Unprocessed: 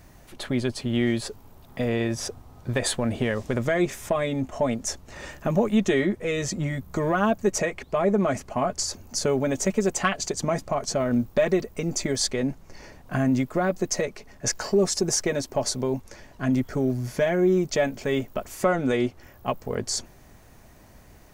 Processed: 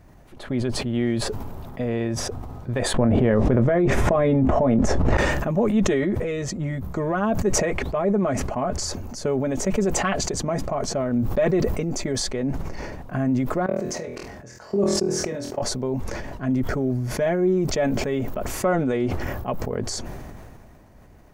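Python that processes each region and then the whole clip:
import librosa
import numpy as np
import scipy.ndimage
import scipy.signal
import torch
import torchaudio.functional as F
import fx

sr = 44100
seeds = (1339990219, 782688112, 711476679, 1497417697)

y = fx.chain(x, sr, fx.lowpass(hz=1100.0, slope=6),
    fx.doubler(ms=23.0, db=-13.0),
    fx.env_flatten(amount_pct=100), at=(2.94, 5.17))
y = fx.chain(y, sr, fx.highpass(hz=63.0, slope=12),
    fx.level_steps(step_db=21),
    fx.room_flutter(wall_m=4.2, rt60_s=0.29), at=(13.66, 15.62))
y = fx.high_shelf(y, sr, hz=2200.0, db=-11.0)
y = fx.sustainer(y, sr, db_per_s=24.0)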